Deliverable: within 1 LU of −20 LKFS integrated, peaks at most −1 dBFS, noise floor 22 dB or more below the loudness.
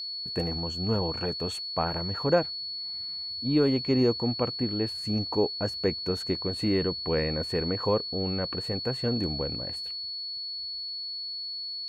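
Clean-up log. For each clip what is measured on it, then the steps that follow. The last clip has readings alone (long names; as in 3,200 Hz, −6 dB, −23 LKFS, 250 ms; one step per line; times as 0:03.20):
crackle rate 25 per second; interfering tone 4,400 Hz; level of the tone −33 dBFS; integrated loudness −28.5 LKFS; sample peak −11.0 dBFS; target loudness −20.0 LKFS
→ click removal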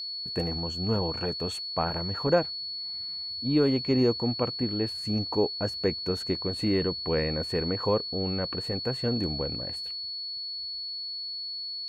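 crackle rate 0 per second; interfering tone 4,400 Hz; level of the tone −33 dBFS
→ notch filter 4,400 Hz, Q 30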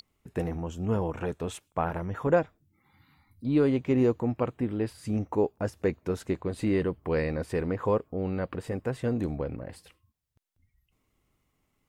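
interfering tone none found; integrated loudness −29.5 LKFS; sample peak −11.5 dBFS; target loudness −20.0 LKFS
→ level +9.5 dB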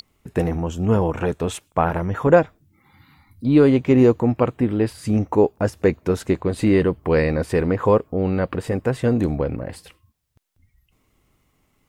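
integrated loudness −20.0 LKFS; sample peak −2.0 dBFS; background noise floor −66 dBFS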